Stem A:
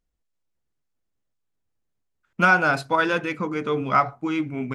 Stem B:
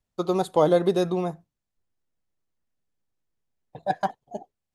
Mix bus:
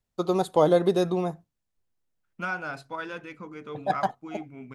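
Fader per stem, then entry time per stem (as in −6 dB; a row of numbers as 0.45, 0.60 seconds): −14.0, −0.5 decibels; 0.00, 0.00 seconds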